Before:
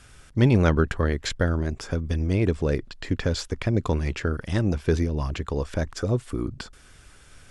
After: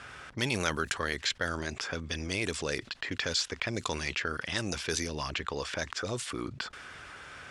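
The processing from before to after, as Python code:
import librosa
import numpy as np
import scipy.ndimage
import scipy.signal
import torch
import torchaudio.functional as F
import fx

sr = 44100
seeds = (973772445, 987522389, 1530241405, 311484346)

y = fx.env_lowpass(x, sr, base_hz=1200.0, full_db=-16.0)
y = scipy.signal.sosfilt(scipy.signal.butter(2, 78.0, 'highpass', fs=sr, output='sos'), y)
y = scipy.signal.lfilter([1.0, -0.97], [1.0], y)
y = fx.env_flatten(y, sr, amount_pct=50)
y = F.gain(torch.from_numpy(y), 9.0).numpy()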